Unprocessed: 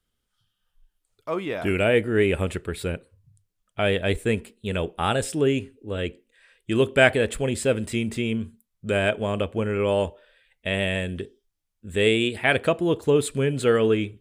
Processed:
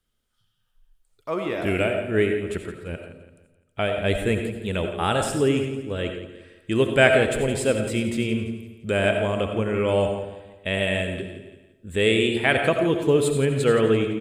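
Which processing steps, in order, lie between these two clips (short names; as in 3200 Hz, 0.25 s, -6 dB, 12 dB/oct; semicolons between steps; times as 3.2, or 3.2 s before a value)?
1.79–3.98 tremolo 2.5 Hz, depth 98%; feedback echo 0.17 s, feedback 41%, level -13 dB; reverb RT60 0.60 s, pre-delay 45 ms, DRR 5.5 dB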